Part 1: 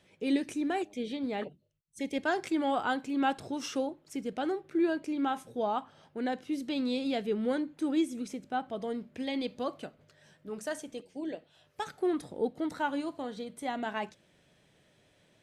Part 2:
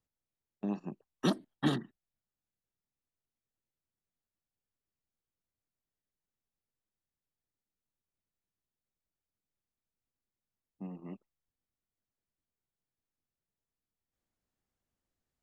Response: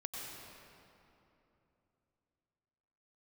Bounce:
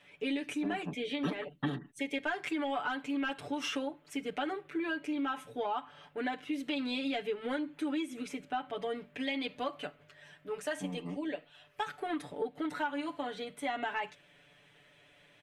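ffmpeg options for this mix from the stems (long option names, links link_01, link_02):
-filter_complex "[0:a]tiltshelf=frequency=650:gain=-5.5,aeval=exprs='0.2*sin(PI/2*1.58*val(0)/0.2)':channel_layout=same,volume=-8.5dB[link_01];[1:a]volume=1dB[link_02];[link_01][link_02]amix=inputs=2:normalize=0,highshelf=frequency=3700:width_type=q:width=1.5:gain=-8,aecho=1:1:6.9:0.98,acompressor=threshold=-31dB:ratio=6"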